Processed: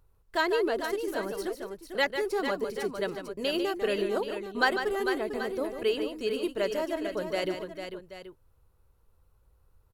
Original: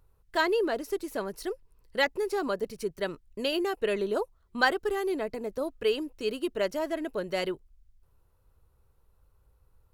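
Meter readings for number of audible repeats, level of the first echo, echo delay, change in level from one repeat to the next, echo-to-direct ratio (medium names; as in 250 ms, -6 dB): 3, -8.5 dB, 148 ms, no regular repeats, -4.5 dB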